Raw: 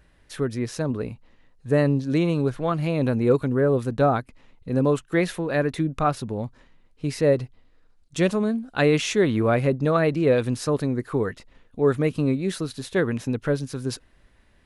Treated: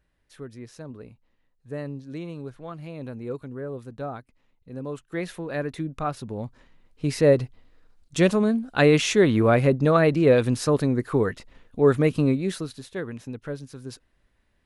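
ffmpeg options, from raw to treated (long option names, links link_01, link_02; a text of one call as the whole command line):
ffmpeg -i in.wav -af "volume=2dB,afade=type=in:start_time=4.85:duration=0.57:silence=0.421697,afade=type=in:start_time=6.13:duration=1.04:silence=0.398107,afade=type=out:start_time=12.19:duration=0.72:silence=0.266073" out.wav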